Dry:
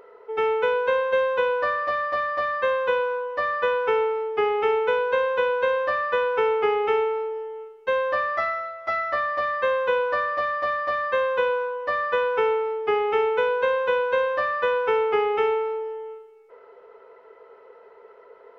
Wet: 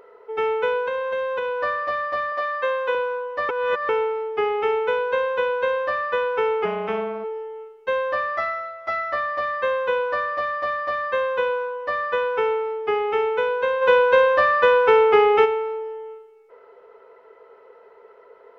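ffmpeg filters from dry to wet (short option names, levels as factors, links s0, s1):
-filter_complex "[0:a]asettb=1/sr,asplit=3[s0][s1][s2];[s0]atrim=end=0.874[s3];[s1]atrim=start=0.87:end=1.61,asetpts=PTS-STARTPTS,afade=t=in:d=0.004:c=qsin,afade=t=out:st=0.736:d=0.004:c=qsin,acompressor=threshold=0.0794:ratio=6:attack=3.2:release=140:knee=1:detection=peak[s4];[s2]atrim=start=1.606[s5];[s3][s4]acrossfade=d=0.004:c1=hsin:c2=qsin[s6];[s6][s5]acrossfade=d=0.004:c1=qsin:c2=hsin,asettb=1/sr,asplit=3[s7][s8][s9];[s7]atrim=end=2.324[s10];[s8]atrim=start=2.32:end=2.95,asetpts=PTS-STARTPTS,afade=t=in:d=0.004:c=qsin,afade=t=out:st=0.626:d=0.004:c=qsin,highpass=340[s11];[s9]atrim=start=2.946[s12];[s10][s11]acrossfade=d=0.004:c1=hsin:c2=qsin[s13];[s13][s12]acrossfade=d=0.004:c1=qsin:c2=hsin,asplit=3[s14][s15][s16];[s14]afade=t=out:st=6.64:d=0.02[s17];[s15]tremolo=f=230:d=0.824,afade=t=in:st=6.64:d=0.02,afade=t=out:st=7.23:d=0.02[s18];[s16]afade=t=in:st=7.23:d=0.02[s19];[s17][s18][s19]amix=inputs=3:normalize=0,asplit=3[s20][s21][s22];[s20]afade=t=out:st=13.81:d=0.02[s23];[s21]acontrast=84,afade=t=in:st=13.81:d=0.02,afade=t=out:st=15.44:d=0.02[s24];[s22]afade=t=in:st=15.44:d=0.02[s25];[s23][s24][s25]amix=inputs=3:normalize=0,asplit=3[s26][s27][s28];[s26]atrim=end=3.492[s29];[s27]atrim=start=3.488:end=3.892,asetpts=PTS-STARTPTS,areverse[s30];[s28]atrim=start=3.888[s31];[s29][s30]acrossfade=d=0.004:c1=hsin:c2=hsin[s32];[s32][s31]acrossfade=d=0.004:c1=hsin:c2=hsin"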